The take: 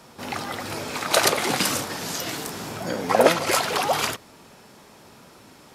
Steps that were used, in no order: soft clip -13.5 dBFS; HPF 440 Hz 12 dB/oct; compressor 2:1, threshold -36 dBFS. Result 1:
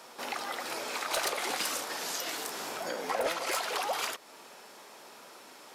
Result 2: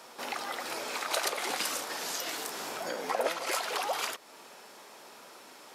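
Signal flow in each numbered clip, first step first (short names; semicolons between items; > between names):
HPF > soft clip > compressor; HPF > compressor > soft clip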